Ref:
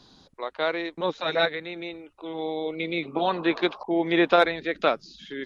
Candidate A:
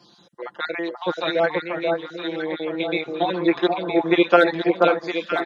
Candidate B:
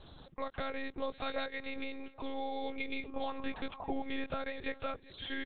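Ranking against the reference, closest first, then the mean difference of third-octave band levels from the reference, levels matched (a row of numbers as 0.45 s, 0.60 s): A, B; 6.0 dB, 8.0 dB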